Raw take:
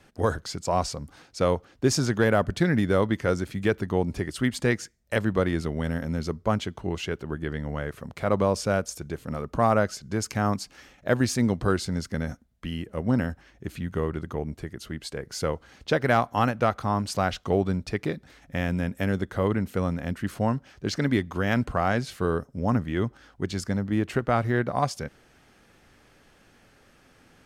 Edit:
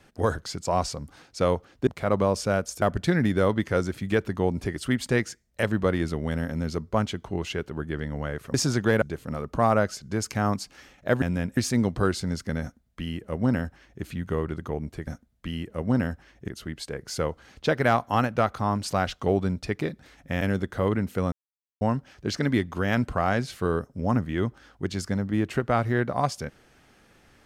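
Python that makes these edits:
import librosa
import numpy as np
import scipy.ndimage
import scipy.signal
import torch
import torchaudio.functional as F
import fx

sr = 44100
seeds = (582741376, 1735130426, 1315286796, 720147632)

y = fx.edit(x, sr, fx.swap(start_s=1.87, length_s=0.48, other_s=8.07, other_length_s=0.95),
    fx.duplicate(start_s=12.26, length_s=1.41, to_s=14.72),
    fx.move(start_s=18.65, length_s=0.35, to_s=11.22),
    fx.silence(start_s=19.91, length_s=0.49), tone=tone)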